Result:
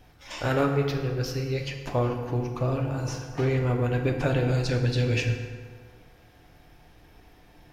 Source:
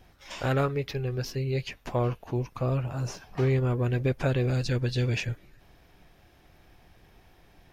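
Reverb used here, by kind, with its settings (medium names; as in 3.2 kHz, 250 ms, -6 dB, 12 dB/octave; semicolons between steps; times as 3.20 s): FDN reverb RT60 1.8 s, low-frequency decay 0.95×, high-frequency decay 0.6×, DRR 2.5 dB; trim +1 dB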